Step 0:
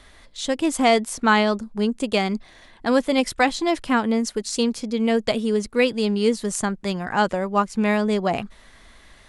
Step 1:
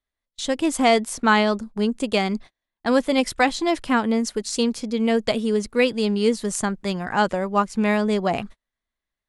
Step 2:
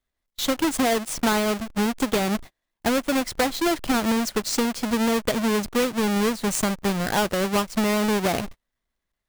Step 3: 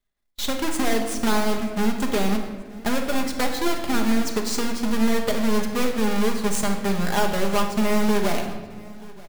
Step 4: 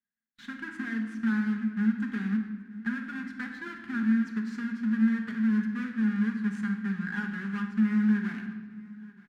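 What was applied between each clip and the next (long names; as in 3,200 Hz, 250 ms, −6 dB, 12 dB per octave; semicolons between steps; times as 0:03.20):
noise gate −36 dBFS, range −38 dB
each half-wave held at its own peak; downward compressor, threshold −20 dBFS, peak gain reduction 10.5 dB
gain on one half-wave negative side −7 dB; repeating echo 930 ms, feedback 46%, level −22.5 dB; rectangular room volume 1,200 cubic metres, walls mixed, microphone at 1.3 metres
pair of resonant band-passes 590 Hz, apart 2.9 octaves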